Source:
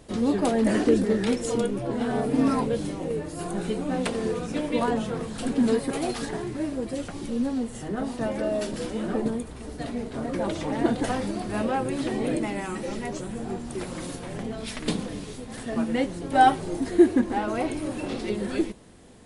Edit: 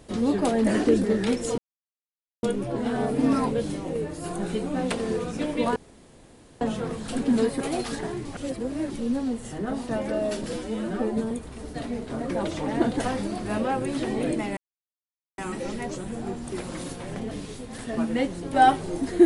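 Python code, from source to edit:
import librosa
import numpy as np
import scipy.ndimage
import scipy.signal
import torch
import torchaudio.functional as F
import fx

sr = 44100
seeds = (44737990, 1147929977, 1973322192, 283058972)

y = fx.edit(x, sr, fx.insert_silence(at_s=1.58, length_s=0.85),
    fx.insert_room_tone(at_s=4.91, length_s=0.85),
    fx.reverse_span(start_s=6.55, length_s=0.65),
    fx.stretch_span(start_s=8.83, length_s=0.52, factor=1.5),
    fx.insert_silence(at_s=12.61, length_s=0.81),
    fx.cut(start_s=14.54, length_s=0.56), tone=tone)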